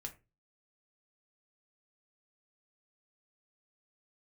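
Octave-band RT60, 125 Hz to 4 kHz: 0.50, 0.35, 0.30, 0.25, 0.25, 0.15 s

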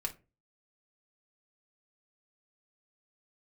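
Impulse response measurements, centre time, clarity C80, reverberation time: 9 ms, 24.0 dB, 0.30 s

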